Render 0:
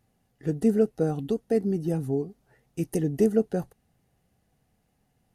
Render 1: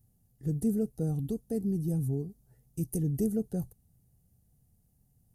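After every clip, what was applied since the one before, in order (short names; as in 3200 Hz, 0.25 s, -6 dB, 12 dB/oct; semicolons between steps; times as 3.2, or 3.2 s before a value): EQ curve 120 Hz 0 dB, 280 Hz -11 dB, 1500 Hz -22 dB, 2400 Hz -23 dB, 12000 Hz +2 dB; in parallel at -1 dB: limiter -32.5 dBFS, peak gain reduction 11 dB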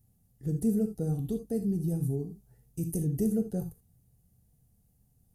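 non-linear reverb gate 0.1 s flat, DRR 5.5 dB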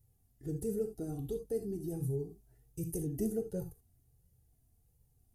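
flange 1.4 Hz, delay 2 ms, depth 1.1 ms, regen -1%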